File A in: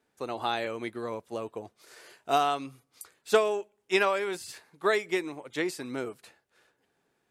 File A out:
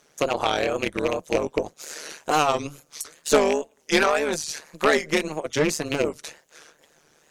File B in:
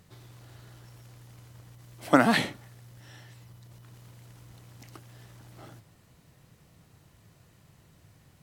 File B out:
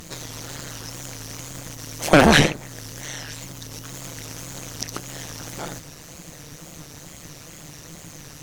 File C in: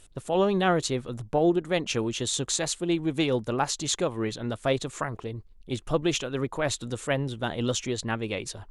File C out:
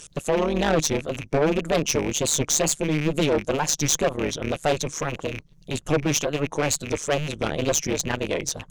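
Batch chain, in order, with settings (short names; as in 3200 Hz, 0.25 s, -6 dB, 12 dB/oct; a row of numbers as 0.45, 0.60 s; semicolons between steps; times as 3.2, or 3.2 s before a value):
rattling part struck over -38 dBFS, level -26 dBFS; thirty-one-band EQ 160 Hz +12 dB, 500 Hz +10 dB, 6300 Hz +11 dB; wow and flutter 130 cents; harmonic-percussive split percussive +5 dB; tube stage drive 17 dB, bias 0.35; AM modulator 150 Hz, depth 80%; mismatched tape noise reduction encoder only; match loudness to -24 LUFS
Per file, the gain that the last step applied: +9.0, +13.0, +4.0 dB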